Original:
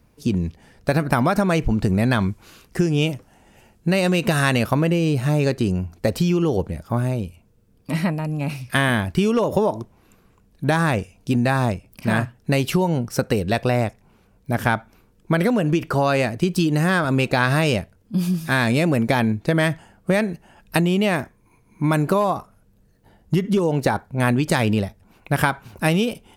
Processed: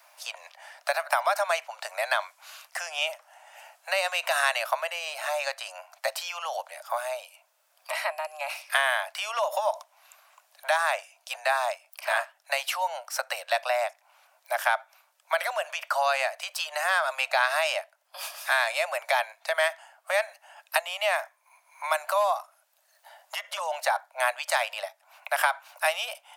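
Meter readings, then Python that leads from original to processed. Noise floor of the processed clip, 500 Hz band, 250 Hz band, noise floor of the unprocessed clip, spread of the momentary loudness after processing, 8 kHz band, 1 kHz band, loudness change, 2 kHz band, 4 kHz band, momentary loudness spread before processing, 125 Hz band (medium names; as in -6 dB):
-68 dBFS, -7.5 dB, under -40 dB, -58 dBFS, 12 LU, -1.5 dB, -2.0 dB, -7.0 dB, -2.0 dB, -1.5 dB, 8 LU, under -40 dB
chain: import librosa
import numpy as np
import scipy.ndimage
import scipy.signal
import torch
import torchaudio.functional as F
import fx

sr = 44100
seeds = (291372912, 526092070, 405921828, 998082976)

y = scipy.signal.sosfilt(scipy.signal.butter(16, 590.0, 'highpass', fs=sr, output='sos'), x)
y = fx.band_squash(y, sr, depth_pct=40)
y = y * librosa.db_to_amplitude(-1.5)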